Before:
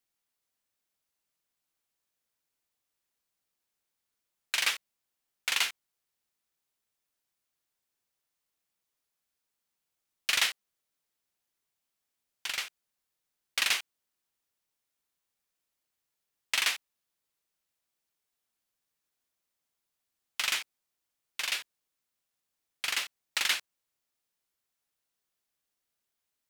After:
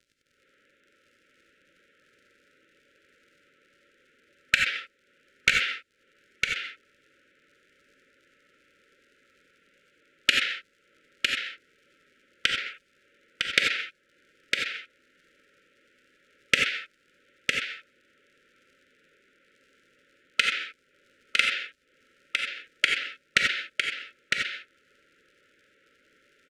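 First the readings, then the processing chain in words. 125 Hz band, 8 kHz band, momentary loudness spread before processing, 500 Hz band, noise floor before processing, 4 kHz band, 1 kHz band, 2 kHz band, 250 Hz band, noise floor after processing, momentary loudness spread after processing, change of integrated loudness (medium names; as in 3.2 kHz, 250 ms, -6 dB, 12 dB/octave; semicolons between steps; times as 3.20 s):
no reading, -2.5 dB, 11 LU, +10.5 dB, -85 dBFS, +4.5 dB, +4.0 dB, +8.5 dB, +15.5 dB, -68 dBFS, 14 LU, +3.5 dB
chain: local Wiener filter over 9 samples; recorder AGC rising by 73 dB/s; high-pass 82 Hz; three-band isolator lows -16 dB, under 240 Hz, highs -22 dB, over 3.8 kHz; in parallel at +2 dB: peak limiter -2 dBFS, peak gain reduction 11.5 dB; on the sum: hard clipper -1.5 dBFS, distortion -6 dB; crackle 58 per s -40 dBFS; brick-wall FIR band-stop 600–1300 Hz; distance through air 53 m; on a send: delay 956 ms -4.5 dB; on the sum: gated-style reverb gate 110 ms rising, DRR 2 dB; trim -7 dB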